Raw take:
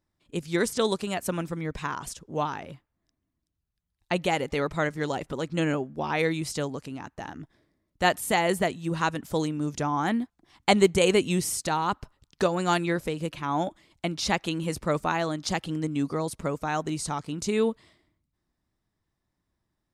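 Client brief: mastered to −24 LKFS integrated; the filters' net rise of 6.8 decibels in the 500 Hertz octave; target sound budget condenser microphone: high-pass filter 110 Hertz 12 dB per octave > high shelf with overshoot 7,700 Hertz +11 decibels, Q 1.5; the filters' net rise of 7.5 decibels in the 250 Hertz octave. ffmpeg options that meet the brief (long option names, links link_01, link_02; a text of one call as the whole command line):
ffmpeg -i in.wav -af "highpass=110,equalizer=frequency=250:width_type=o:gain=9,equalizer=frequency=500:width_type=o:gain=5.5,highshelf=frequency=7700:width_type=q:width=1.5:gain=11,volume=-2dB" out.wav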